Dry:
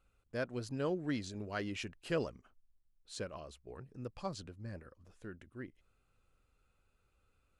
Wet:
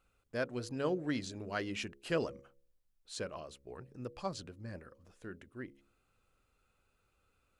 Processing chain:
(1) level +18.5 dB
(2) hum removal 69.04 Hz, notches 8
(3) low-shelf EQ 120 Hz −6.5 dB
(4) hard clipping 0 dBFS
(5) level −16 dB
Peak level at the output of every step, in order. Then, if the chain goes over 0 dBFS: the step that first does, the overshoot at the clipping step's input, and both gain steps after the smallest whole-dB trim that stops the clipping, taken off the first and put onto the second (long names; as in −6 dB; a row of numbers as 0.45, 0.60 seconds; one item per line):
−3.0, −3.0, −4.5, −4.5, −20.5 dBFS
no step passes full scale